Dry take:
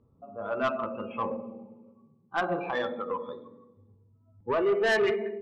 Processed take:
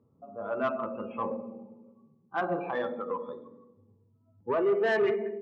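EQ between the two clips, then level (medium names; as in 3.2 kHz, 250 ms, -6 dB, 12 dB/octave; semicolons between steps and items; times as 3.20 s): high-pass 120 Hz 12 dB/octave; low-pass 1.4 kHz 6 dB/octave; 0.0 dB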